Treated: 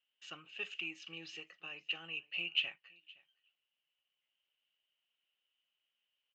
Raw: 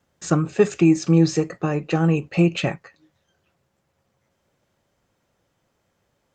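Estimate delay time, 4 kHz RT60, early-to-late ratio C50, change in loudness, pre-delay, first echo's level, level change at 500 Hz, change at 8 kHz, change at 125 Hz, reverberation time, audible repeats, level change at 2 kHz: 517 ms, no reverb, no reverb, -19.5 dB, no reverb, -24.0 dB, -34.5 dB, under -25 dB, under -40 dB, no reverb, 1, -8.0 dB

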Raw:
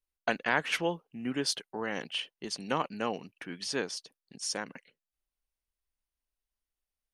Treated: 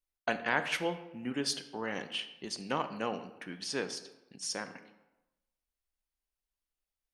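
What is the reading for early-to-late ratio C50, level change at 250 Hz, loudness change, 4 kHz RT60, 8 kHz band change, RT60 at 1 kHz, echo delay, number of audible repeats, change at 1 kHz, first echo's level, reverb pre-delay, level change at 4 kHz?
12.0 dB, -2.0 dB, -2.0 dB, 0.60 s, -2.0 dB, 1.0 s, no echo, no echo, -2.0 dB, no echo, 8 ms, -2.0 dB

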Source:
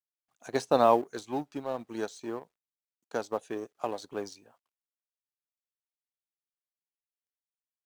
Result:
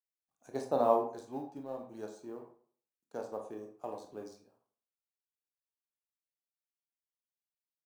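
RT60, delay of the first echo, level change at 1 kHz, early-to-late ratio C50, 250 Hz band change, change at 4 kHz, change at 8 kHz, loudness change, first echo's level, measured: 0.50 s, no echo, -6.5 dB, 7.5 dB, -6.5 dB, -15.0 dB, -11.5 dB, -5.5 dB, no echo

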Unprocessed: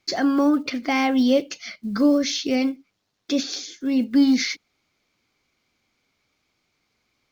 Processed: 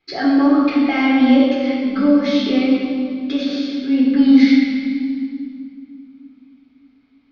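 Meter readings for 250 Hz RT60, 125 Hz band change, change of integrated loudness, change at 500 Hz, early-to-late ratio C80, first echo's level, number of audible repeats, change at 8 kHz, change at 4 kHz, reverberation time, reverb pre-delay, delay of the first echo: 3.8 s, no reading, +5.5 dB, +3.5 dB, 1.0 dB, no echo, no echo, no reading, +1.0 dB, 2.4 s, 7 ms, no echo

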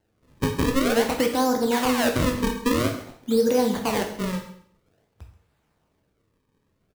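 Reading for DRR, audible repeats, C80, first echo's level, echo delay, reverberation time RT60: 3.0 dB, 1, 10.5 dB, -18.0 dB, 133 ms, 0.60 s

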